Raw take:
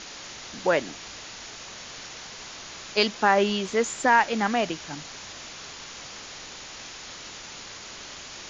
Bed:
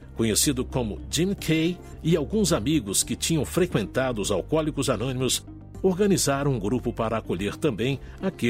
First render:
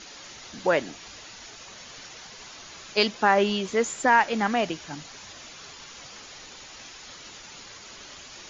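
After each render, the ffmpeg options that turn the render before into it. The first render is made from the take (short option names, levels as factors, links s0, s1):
-af "afftdn=nr=7:nf=-42"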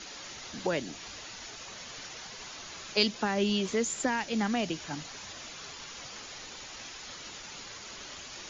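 -filter_complex "[0:a]acrossover=split=320|3000[s0][s1][s2];[s1]acompressor=threshold=0.0251:ratio=6[s3];[s0][s3][s2]amix=inputs=3:normalize=0"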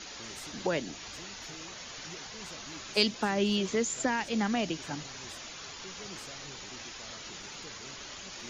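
-filter_complex "[1:a]volume=0.0422[s0];[0:a][s0]amix=inputs=2:normalize=0"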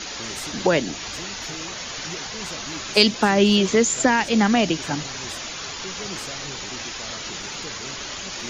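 -af "volume=3.76,alimiter=limit=0.794:level=0:latency=1"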